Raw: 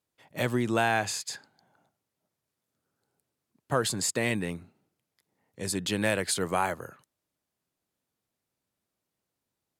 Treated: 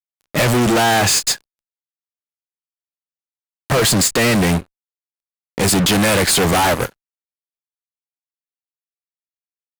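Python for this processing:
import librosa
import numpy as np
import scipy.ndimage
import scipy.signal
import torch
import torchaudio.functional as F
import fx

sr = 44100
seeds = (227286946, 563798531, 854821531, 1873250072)

y = fx.fuzz(x, sr, gain_db=46.0, gate_db=-48.0)
y = fx.end_taper(y, sr, db_per_s=480.0)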